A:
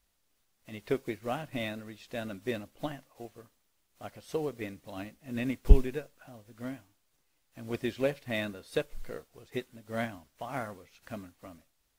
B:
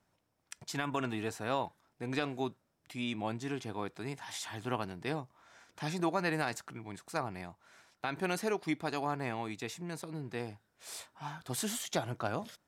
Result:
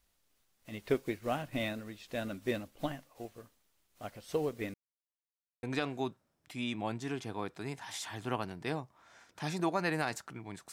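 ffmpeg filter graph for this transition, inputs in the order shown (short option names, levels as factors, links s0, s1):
-filter_complex "[0:a]apad=whole_dur=10.72,atrim=end=10.72,asplit=2[s0][s1];[s0]atrim=end=4.74,asetpts=PTS-STARTPTS,afade=t=out:st=4.736:d=0.004:c=hsin[s2];[s1]atrim=start=4.74:end=5.63,asetpts=PTS-STARTPTS,volume=0[s3];[1:a]atrim=start=2.03:end=7.12,asetpts=PTS-STARTPTS,afade=t=in:d=0.004:c=hsin[s4];[s2][s3][s4]concat=n=3:v=0:a=1"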